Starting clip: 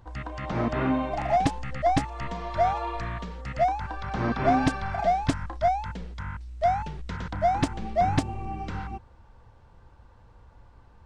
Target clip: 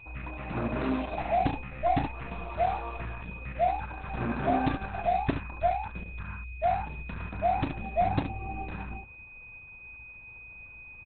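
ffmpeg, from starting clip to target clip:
-filter_complex "[0:a]adynamicsmooth=sensitivity=7:basefreq=3500,asplit=3[s0][s1][s2];[s0]afade=t=out:st=0.8:d=0.02[s3];[s1]lowpass=f=4600:t=q:w=5.2,afade=t=in:st=0.8:d=0.02,afade=t=out:st=1.21:d=0.02[s4];[s2]afade=t=in:st=1.21:d=0.02[s5];[s3][s4][s5]amix=inputs=3:normalize=0,aecho=1:1:35|71:0.398|0.447,aeval=exprs='val(0)+0.01*sin(2*PI*2500*n/s)':c=same,volume=0.631" -ar 48000 -c:a libopus -b:a 8k

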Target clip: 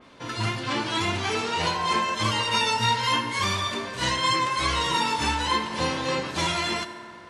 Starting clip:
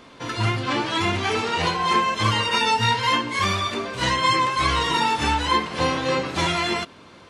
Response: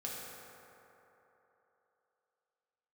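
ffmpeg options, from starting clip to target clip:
-filter_complex "[0:a]asplit=2[s0][s1];[1:a]atrim=start_sample=2205,asetrate=52920,aresample=44100[s2];[s1][s2]afir=irnorm=-1:irlink=0,volume=0.596[s3];[s0][s3]amix=inputs=2:normalize=0,adynamicequalizer=threshold=0.02:dfrequency=3500:dqfactor=0.7:tfrequency=3500:tqfactor=0.7:attack=5:release=100:ratio=0.375:range=2.5:mode=boostabove:tftype=highshelf,volume=0.473"

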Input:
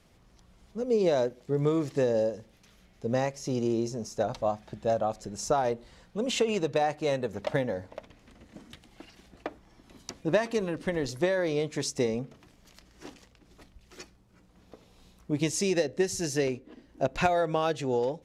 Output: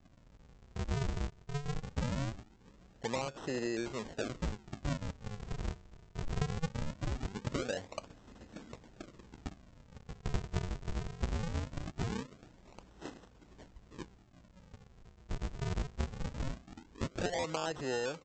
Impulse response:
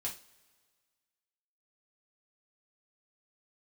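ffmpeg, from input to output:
-filter_complex "[0:a]acrossover=split=330|3300[s0][s1][s2];[s0]acompressor=threshold=0.00501:ratio=4[s3];[s1]acompressor=threshold=0.0178:ratio=4[s4];[s2]acompressor=threshold=0.00562:ratio=4[s5];[s3][s4][s5]amix=inputs=3:normalize=0,aresample=16000,acrusher=samples=33:mix=1:aa=0.000001:lfo=1:lforange=52.8:lforate=0.21,aresample=44100"

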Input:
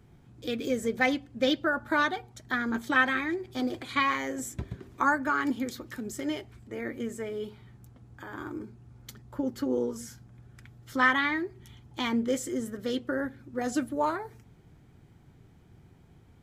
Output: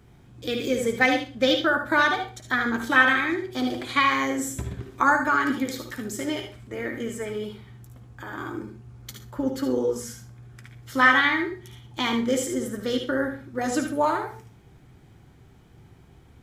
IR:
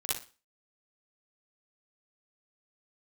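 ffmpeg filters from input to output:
-filter_complex "[0:a]lowshelf=f=440:g=-4,asplit=2[s0][s1];[1:a]atrim=start_sample=2205,lowshelf=f=140:g=6,adelay=15[s2];[s1][s2]afir=irnorm=-1:irlink=0,volume=0.355[s3];[s0][s3]amix=inputs=2:normalize=0,volume=1.88"

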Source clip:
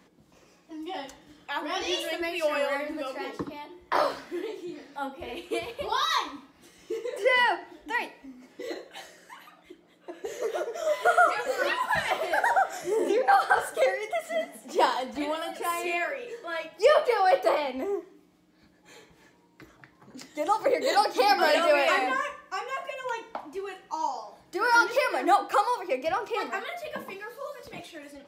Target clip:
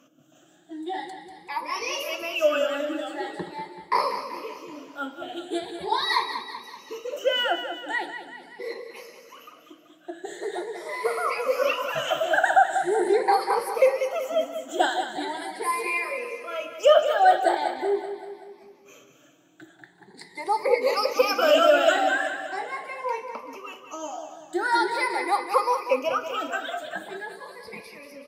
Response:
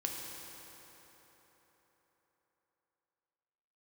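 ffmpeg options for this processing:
-af "afftfilt=real='re*pow(10,20/40*sin(2*PI*(0.88*log(max(b,1)*sr/1024/100)/log(2)-(0.42)*(pts-256)/sr)))':imag='im*pow(10,20/40*sin(2*PI*(0.88*log(max(b,1)*sr/1024/100)/log(2)-(0.42)*(pts-256)/sr)))':win_size=1024:overlap=0.75,highpass=150,aecho=1:1:191|382|573|764|955|1146:0.335|0.181|0.0977|0.0527|0.0285|0.0154,volume=0.708"

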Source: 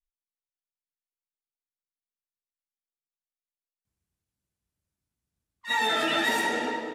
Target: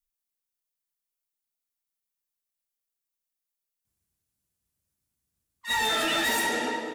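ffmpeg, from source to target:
-af "crystalizer=i=1.5:c=0,volume=12.6,asoftclip=hard,volume=0.0794"

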